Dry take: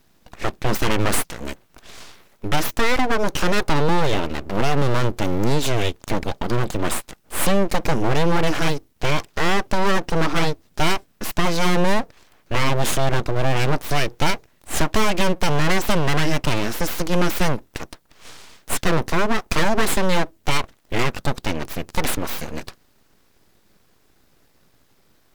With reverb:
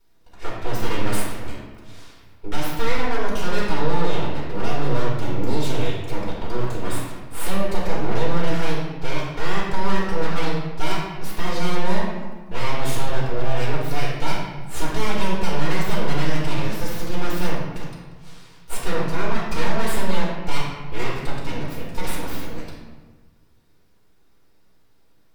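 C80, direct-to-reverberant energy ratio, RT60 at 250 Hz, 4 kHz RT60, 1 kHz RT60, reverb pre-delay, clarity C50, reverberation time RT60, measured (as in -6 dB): 3.0 dB, -7.0 dB, 1.7 s, 0.85 s, 1.3 s, 4 ms, 0.5 dB, 1.3 s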